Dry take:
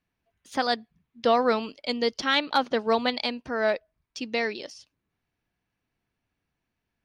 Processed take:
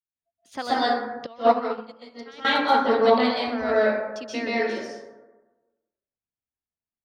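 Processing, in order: spectral noise reduction 24 dB; plate-style reverb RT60 1.2 s, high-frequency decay 0.35×, pre-delay 115 ms, DRR -9 dB; 1.26–2.45 s: upward expansion 2.5:1, over -21 dBFS; trim -6 dB

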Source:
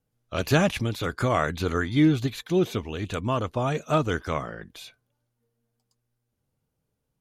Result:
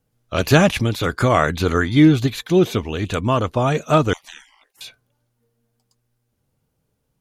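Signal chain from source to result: 4.13–4.81 s: spectral gate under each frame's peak -25 dB weak; trim +7.5 dB

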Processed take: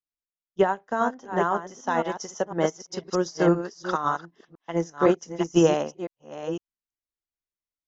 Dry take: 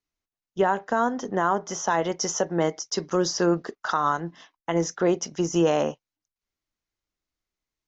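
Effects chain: chunks repeated in reverse 506 ms, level -4.5 dB; upward expansion 2.5:1, over -30 dBFS; trim +3.5 dB

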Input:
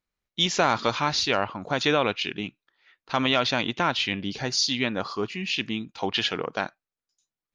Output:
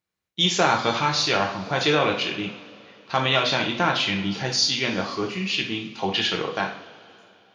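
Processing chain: high-pass 82 Hz; two-slope reverb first 0.46 s, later 3 s, from -20 dB, DRR 0.5 dB

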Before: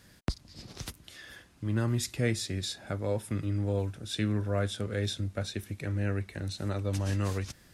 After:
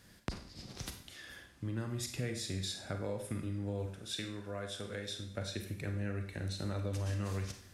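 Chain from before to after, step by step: compression, threshold -31 dBFS, peak gain reduction 9 dB; 3.86–5.31 s: bass shelf 280 Hz -8.5 dB; Schroeder reverb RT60 0.57 s, combs from 32 ms, DRR 5.5 dB; trim -3 dB

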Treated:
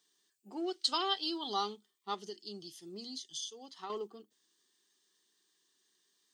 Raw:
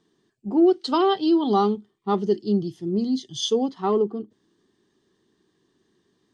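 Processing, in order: differentiator; 2.14–3.90 s: compression 6:1, threshold -46 dBFS, peak gain reduction 17 dB; trim +5.5 dB

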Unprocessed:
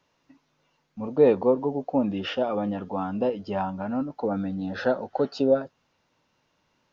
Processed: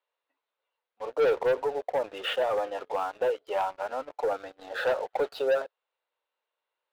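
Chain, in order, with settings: elliptic band-pass 450–3900 Hz, stop band 40 dB; waveshaping leveller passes 3; trim -8.5 dB

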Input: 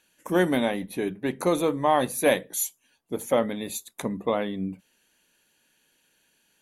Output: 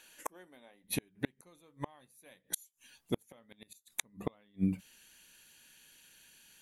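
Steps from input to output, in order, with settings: peaking EQ 130 Hz -10 dB 2.9 oct, from 0.84 s 470 Hz; inverted gate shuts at -26 dBFS, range -38 dB; trim +8 dB

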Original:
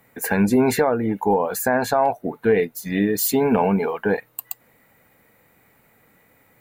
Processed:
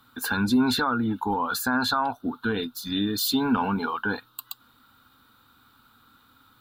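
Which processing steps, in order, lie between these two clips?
FFT filter 100 Hz 0 dB, 180 Hz -10 dB, 250 Hz +3 dB, 420 Hz -12 dB, 630 Hz -15 dB, 940 Hz 0 dB, 1.4 kHz +11 dB, 2 kHz -18 dB, 3.6 kHz +14 dB, 6.6 kHz -5 dB; in parallel at +2 dB: peak limiter -19 dBFS, peak gain reduction 10.5 dB; on the sum: trim -7 dB

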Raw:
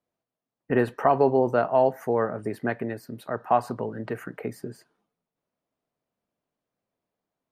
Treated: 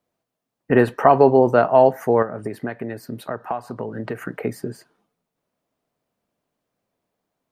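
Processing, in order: 2.22–4.22 s: compression 6:1, threshold -31 dBFS, peak gain reduction 15 dB; trim +7 dB

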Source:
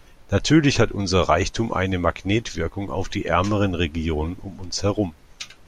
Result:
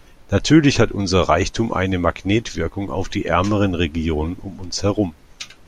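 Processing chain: peaking EQ 270 Hz +2.5 dB 1 oct; trim +2 dB

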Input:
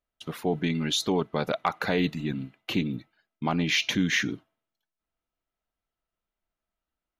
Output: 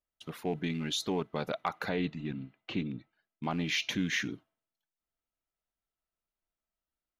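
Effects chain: rattle on loud lows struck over -27 dBFS, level -33 dBFS; 1.89–3.43 s: distance through air 140 m; trim -6.5 dB

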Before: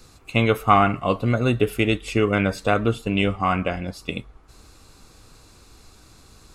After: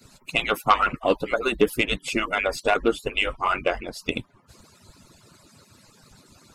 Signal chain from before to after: harmonic-percussive separation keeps percussive; in parallel at -3.5 dB: sine folder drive 6 dB, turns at -4 dBFS; on the sum: trim -6.5 dB

